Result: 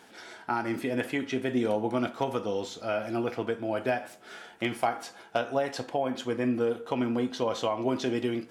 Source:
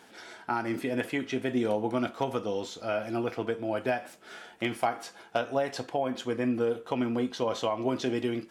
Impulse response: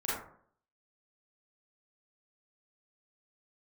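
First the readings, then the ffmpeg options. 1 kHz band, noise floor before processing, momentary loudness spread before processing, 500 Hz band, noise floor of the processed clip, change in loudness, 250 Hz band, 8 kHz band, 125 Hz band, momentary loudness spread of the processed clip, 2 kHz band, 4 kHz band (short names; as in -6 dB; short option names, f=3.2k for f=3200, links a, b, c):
+0.5 dB, -54 dBFS, 5 LU, +0.5 dB, -52 dBFS, +0.5 dB, +0.5 dB, +0.5 dB, +0.5 dB, 5 LU, +0.5 dB, +0.5 dB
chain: -filter_complex "[0:a]asplit=2[a][b];[1:a]atrim=start_sample=2205[c];[b][c]afir=irnorm=-1:irlink=0,volume=-21dB[d];[a][d]amix=inputs=2:normalize=0"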